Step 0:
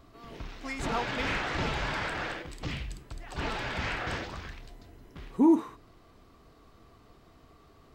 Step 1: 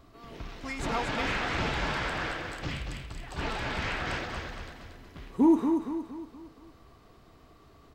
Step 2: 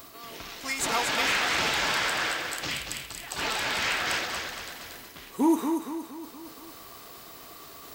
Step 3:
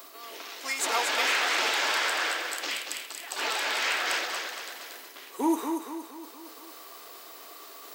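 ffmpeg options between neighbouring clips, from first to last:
ffmpeg -i in.wav -af "aecho=1:1:233|466|699|932|1165:0.501|0.221|0.097|0.0427|0.0188" out.wav
ffmpeg -i in.wav -af "aemphasis=mode=production:type=riaa,areverse,acompressor=mode=upward:threshold=-40dB:ratio=2.5,areverse,volume=3.5dB" out.wav
ffmpeg -i in.wav -af "highpass=frequency=330:width=0.5412,highpass=frequency=330:width=1.3066" out.wav

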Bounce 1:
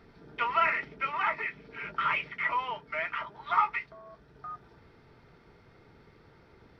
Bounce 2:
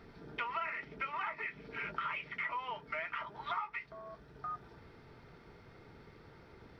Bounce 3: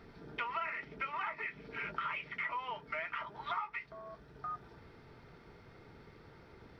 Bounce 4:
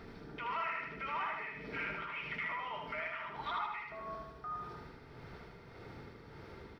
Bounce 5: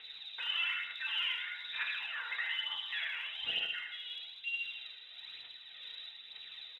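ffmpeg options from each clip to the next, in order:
ffmpeg -i in.wav -af "acompressor=threshold=-37dB:ratio=6,volume=1dB" out.wav
ffmpeg -i in.wav -af anull out.wav
ffmpeg -i in.wav -af "alimiter=level_in=12dB:limit=-24dB:level=0:latency=1:release=11,volume=-12dB,tremolo=f=1.7:d=0.51,aecho=1:1:77|154|231|308|385|462|539:0.668|0.341|0.174|0.0887|0.0452|0.0231|0.0118,volume=5dB" out.wav
ffmpeg -i in.wav -filter_complex "[0:a]asplit=2[link_01][link_02];[link_02]adelay=34,volume=-5dB[link_03];[link_01][link_03]amix=inputs=2:normalize=0,lowpass=frequency=3400:width_type=q:width=0.5098,lowpass=frequency=3400:width_type=q:width=0.6013,lowpass=frequency=3400:width_type=q:width=0.9,lowpass=frequency=3400:width_type=q:width=2.563,afreqshift=-4000,aphaser=in_gain=1:out_gain=1:delay=2.2:decay=0.43:speed=1.1:type=triangular" out.wav

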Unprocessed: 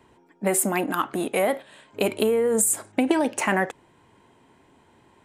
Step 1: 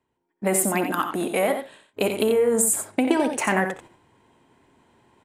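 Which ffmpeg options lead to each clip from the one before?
ffmpeg -i in.wav -af "agate=range=-21dB:threshold=-47dB:ratio=16:detection=peak,areverse,acompressor=mode=upward:threshold=-44dB:ratio=2.5,areverse,aecho=1:1:63|89:0.237|0.398" out.wav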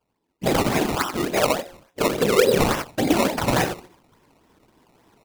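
ffmpeg -i in.wav -af "afftfilt=real='hypot(re,im)*cos(2*PI*random(0))':imag='hypot(re,im)*sin(2*PI*random(1))':win_size=512:overlap=0.75,bandreject=frequency=179.9:width_type=h:width=4,bandreject=frequency=359.8:width_type=h:width=4,bandreject=frequency=539.7:width_type=h:width=4,bandreject=frequency=719.6:width_type=h:width=4,bandreject=frequency=899.5:width_type=h:width=4,bandreject=frequency=1079.4:width_type=h:width=4,bandreject=frequency=1259.3:width_type=h:width=4,bandreject=frequency=1439.2:width_type=h:width=4,acrusher=samples=19:mix=1:aa=0.000001:lfo=1:lforange=19:lforate=3.5,volume=7.5dB" out.wav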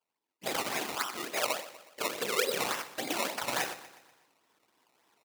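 ffmpeg -i in.wav -af "highpass=frequency=1300:poles=1,aecho=1:1:122|244|366|488|610:0.158|0.0824|0.0429|0.0223|0.0116,volume=-6dB" out.wav

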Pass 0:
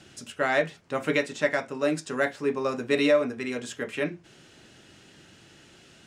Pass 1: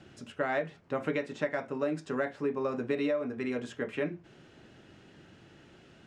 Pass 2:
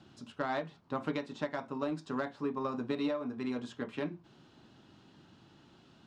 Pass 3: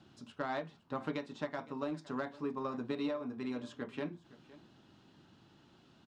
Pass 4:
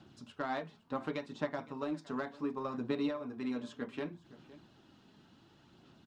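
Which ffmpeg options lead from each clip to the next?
ffmpeg -i in.wav -af "lowpass=frequency=1400:poles=1,acompressor=threshold=-27dB:ratio=6" out.wav
ffmpeg -i in.wav -af "aeval=exprs='0.15*(cos(1*acos(clip(val(0)/0.15,-1,1)))-cos(1*PI/2))+0.00473*(cos(7*acos(clip(val(0)/0.15,-1,1)))-cos(7*PI/2))':channel_layout=same,equalizer=frequency=125:width_type=o:width=1:gain=3,equalizer=frequency=250:width_type=o:width=1:gain=6,equalizer=frequency=500:width_type=o:width=1:gain=-4,equalizer=frequency=1000:width_type=o:width=1:gain=10,equalizer=frequency=2000:width_type=o:width=1:gain=-6,equalizer=frequency=4000:width_type=o:width=1:gain=9,volume=-5.5dB" out.wav
ffmpeg -i in.wav -af "aecho=1:1:513:0.106,volume=-3dB" out.wav
ffmpeg -i in.wav -af "aphaser=in_gain=1:out_gain=1:delay=4.7:decay=0.3:speed=0.68:type=sinusoidal" out.wav

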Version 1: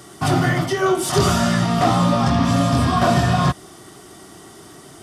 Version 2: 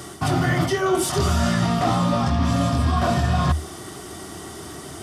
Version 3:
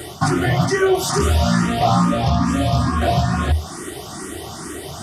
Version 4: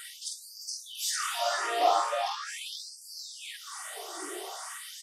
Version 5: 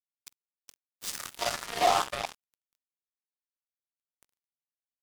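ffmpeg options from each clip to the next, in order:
ffmpeg -i in.wav -af "equalizer=frequency=77:width_type=o:width=0.28:gain=13.5,areverse,acompressor=threshold=-23dB:ratio=6,areverse,volume=5.5dB" out.wav
ffmpeg -i in.wav -filter_complex "[0:a]alimiter=limit=-13dB:level=0:latency=1:release=246,asplit=2[link_01][link_02];[link_02]afreqshift=2.3[link_03];[link_01][link_03]amix=inputs=2:normalize=1,volume=8dB" out.wav
ffmpeg -i in.wav -filter_complex "[0:a]asplit=2[link_01][link_02];[link_02]adelay=47,volume=-4dB[link_03];[link_01][link_03]amix=inputs=2:normalize=0,afftfilt=real='re*gte(b*sr/1024,300*pow(4500/300,0.5+0.5*sin(2*PI*0.41*pts/sr)))':imag='im*gte(b*sr/1024,300*pow(4500/300,0.5+0.5*sin(2*PI*0.41*pts/sr)))':win_size=1024:overlap=0.75,volume=-7.5dB" out.wav
ffmpeg -i in.wav -af "acrusher=bits=3:mix=0:aa=0.5" out.wav

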